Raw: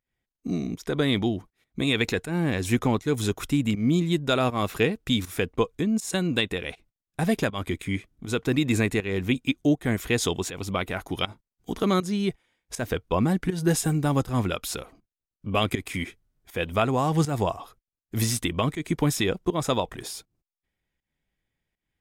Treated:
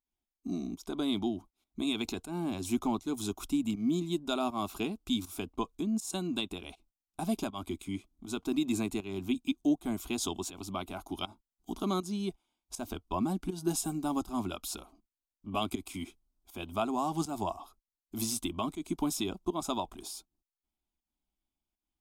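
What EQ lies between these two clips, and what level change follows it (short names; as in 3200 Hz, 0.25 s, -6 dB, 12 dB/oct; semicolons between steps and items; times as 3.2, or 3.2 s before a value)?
fixed phaser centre 490 Hz, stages 6; -5.0 dB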